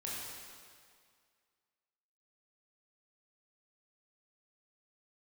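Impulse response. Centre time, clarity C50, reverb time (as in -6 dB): 129 ms, -2.0 dB, 2.0 s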